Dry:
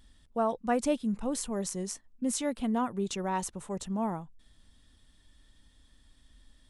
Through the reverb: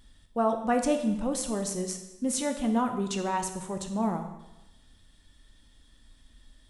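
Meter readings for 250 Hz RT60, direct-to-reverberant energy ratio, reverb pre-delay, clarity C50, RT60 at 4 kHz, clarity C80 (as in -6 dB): 0.95 s, 5.0 dB, 5 ms, 8.0 dB, 0.95 s, 10.0 dB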